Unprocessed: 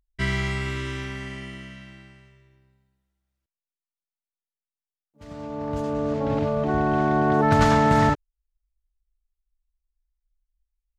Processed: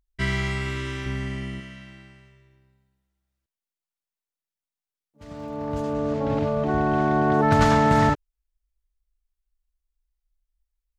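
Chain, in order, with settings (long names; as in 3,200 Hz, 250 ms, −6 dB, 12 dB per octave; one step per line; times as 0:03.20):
0:01.06–0:01.60: low-shelf EQ 320 Hz +8 dB
0:05.28–0:06.06: surface crackle 43 per second −47 dBFS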